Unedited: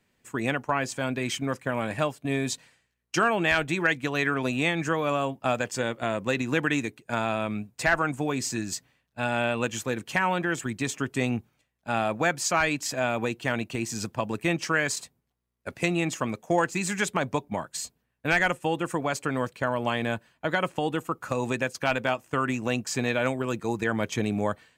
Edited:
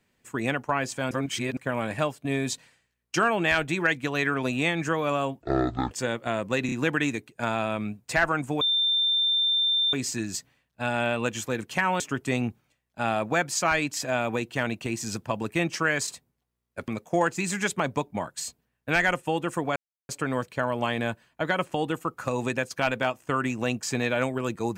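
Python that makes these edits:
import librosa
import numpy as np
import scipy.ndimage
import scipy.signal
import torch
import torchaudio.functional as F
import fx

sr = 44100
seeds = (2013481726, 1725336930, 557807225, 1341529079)

y = fx.edit(x, sr, fx.reverse_span(start_s=1.11, length_s=0.46),
    fx.speed_span(start_s=5.41, length_s=0.26, speed=0.52),
    fx.stutter(start_s=6.42, slice_s=0.03, count=3),
    fx.insert_tone(at_s=8.31, length_s=1.32, hz=3580.0, db=-20.5),
    fx.cut(start_s=10.38, length_s=0.51),
    fx.cut(start_s=15.77, length_s=0.48),
    fx.insert_silence(at_s=19.13, length_s=0.33), tone=tone)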